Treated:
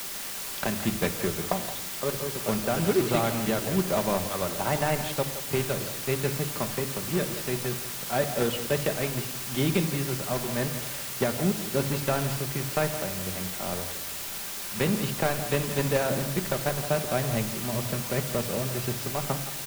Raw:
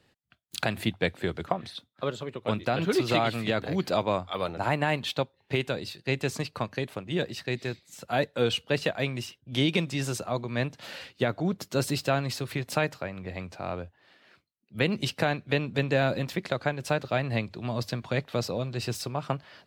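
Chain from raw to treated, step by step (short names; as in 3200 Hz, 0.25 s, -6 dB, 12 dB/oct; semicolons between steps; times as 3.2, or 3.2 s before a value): block floating point 3-bit; LPF 1400 Hz 6 dB/oct; requantised 6-bit, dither triangular; speakerphone echo 0.17 s, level -11 dB; shoebox room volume 2800 m³, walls furnished, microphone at 1.2 m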